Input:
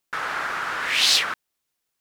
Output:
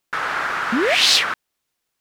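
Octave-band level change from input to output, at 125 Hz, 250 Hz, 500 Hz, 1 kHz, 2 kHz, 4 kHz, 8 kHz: n/a, +19.0 dB, +14.0 dB, +4.5 dB, +4.0 dB, +3.5 dB, +2.0 dB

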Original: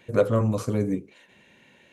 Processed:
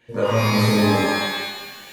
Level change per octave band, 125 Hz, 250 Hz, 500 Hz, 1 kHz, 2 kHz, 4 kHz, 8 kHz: +5.0, +7.0, +3.5, +13.0, +18.0, +24.5, +13.0 dB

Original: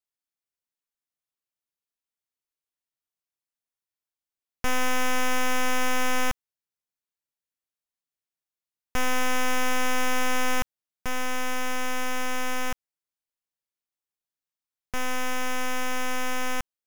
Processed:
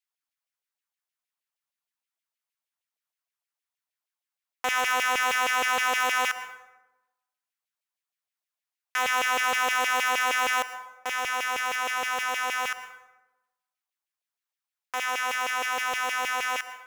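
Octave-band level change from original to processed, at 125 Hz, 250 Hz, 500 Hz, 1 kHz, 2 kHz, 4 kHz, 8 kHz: under -15 dB, -14.5 dB, -3.0 dB, +3.5 dB, +4.5 dB, +3.0 dB, 0.0 dB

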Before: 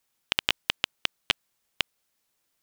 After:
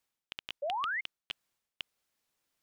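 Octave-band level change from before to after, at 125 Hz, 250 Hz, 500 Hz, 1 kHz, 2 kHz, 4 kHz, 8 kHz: under -15 dB, -19.5 dB, +2.0 dB, +3.0 dB, -6.5 dB, -15.0 dB, under -20 dB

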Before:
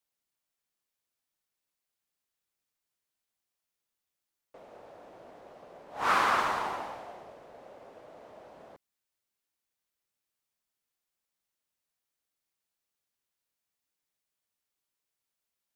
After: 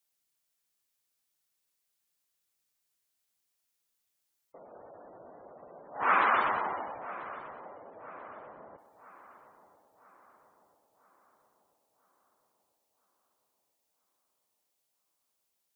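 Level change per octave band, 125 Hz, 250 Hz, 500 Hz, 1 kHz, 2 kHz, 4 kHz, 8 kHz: n/a, -1.0 dB, 0.0 dB, +1.0 dB, +1.0 dB, -7.5 dB, under -20 dB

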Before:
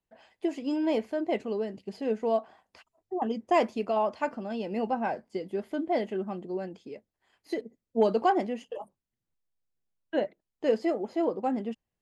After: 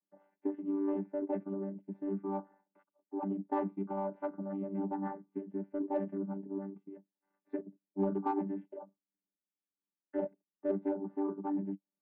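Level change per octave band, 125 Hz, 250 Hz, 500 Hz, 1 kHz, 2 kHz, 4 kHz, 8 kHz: +1.0 dB, -3.5 dB, -9.5 dB, -10.5 dB, -17.0 dB, under -30 dB, n/a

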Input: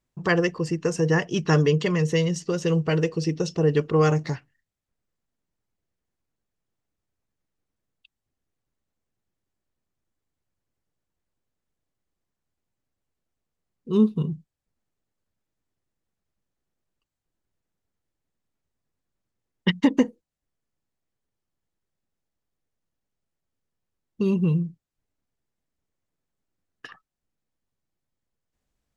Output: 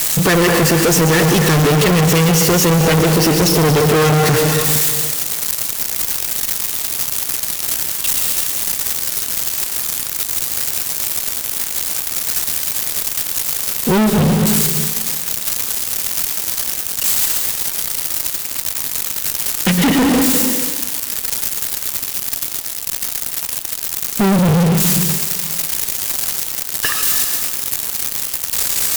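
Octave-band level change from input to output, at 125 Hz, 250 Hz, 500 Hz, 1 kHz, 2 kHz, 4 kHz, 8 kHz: +10.0 dB, +9.5 dB, +9.0 dB, +14.5 dB, +13.0 dB, +19.5 dB, n/a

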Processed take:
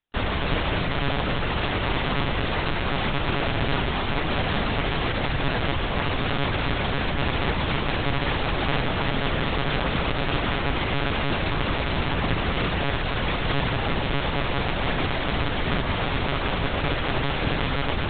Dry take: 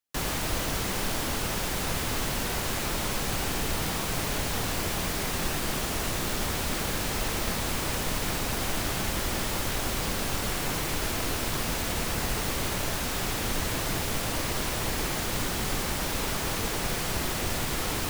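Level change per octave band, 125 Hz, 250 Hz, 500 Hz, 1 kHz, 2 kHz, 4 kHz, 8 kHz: +7.0 dB, +6.0 dB, +6.0 dB, +6.0 dB, +6.0 dB, +3.0 dB, under -40 dB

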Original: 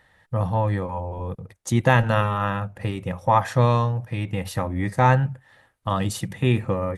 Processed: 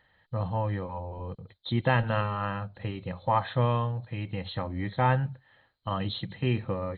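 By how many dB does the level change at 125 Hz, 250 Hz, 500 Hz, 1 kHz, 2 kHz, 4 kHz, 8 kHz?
-7.0 dB, -7.0 dB, -7.0 dB, -7.0 dB, -7.0 dB, -2.5 dB, under -40 dB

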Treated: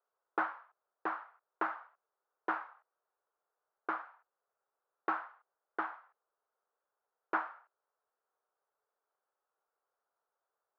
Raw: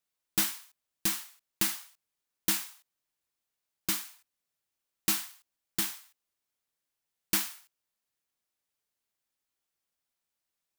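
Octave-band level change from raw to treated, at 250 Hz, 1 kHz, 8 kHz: -7.0 dB, +9.5 dB, under -40 dB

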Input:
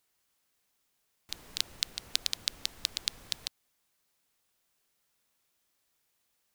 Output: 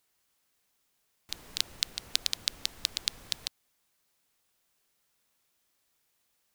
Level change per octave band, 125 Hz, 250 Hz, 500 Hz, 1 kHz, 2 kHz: +1.5, +1.5, +1.5, +1.5, +1.5 dB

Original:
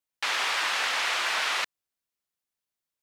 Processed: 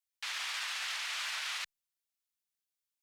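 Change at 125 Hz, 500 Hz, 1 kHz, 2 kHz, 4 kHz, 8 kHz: n/a, -21.5 dB, -15.0 dB, -11.0 dB, -8.5 dB, -7.0 dB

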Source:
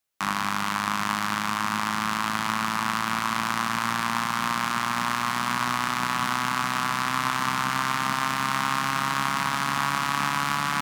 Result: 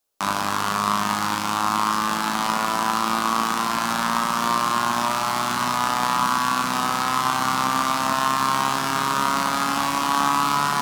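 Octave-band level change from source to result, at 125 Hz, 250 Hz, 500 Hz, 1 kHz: +0.5, +4.0, +8.5, +5.0 dB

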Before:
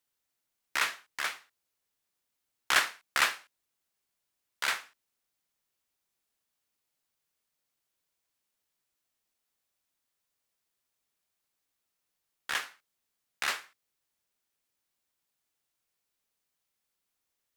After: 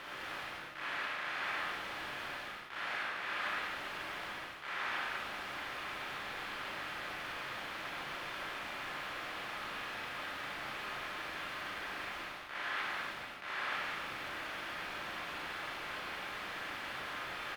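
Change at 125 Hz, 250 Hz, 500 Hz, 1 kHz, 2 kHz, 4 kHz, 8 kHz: n/a, +9.5 dB, +5.5 dB, +1.0 dB, -1.0 dB, -3.0 dB, -12.0 dB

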